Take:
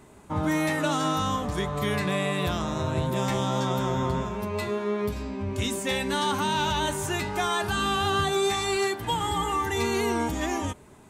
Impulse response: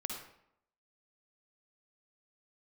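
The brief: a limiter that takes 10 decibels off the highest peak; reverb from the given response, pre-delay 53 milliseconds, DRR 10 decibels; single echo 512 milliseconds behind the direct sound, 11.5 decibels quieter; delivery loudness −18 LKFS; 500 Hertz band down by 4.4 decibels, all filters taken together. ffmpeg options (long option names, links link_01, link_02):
-filter_complex "[0:a]equalizer=frequency=500:width_type=o:gain=-6,alimiter=level_in=1.5dB:limit=-24dB:level=0:latency=1,volume=-1.5dB,aecho=1:1:512:0.266,asplit=2[link_01][link_02];[1:a]atrim=start_sample=2205,adelay=53[link_03];[link_02][link_03]afir=irnorm=-1:irlink=0,volume=-10.5dB[link_04];[link_01][link_04]amix=inputs=2:normalize=0,volume=15dB"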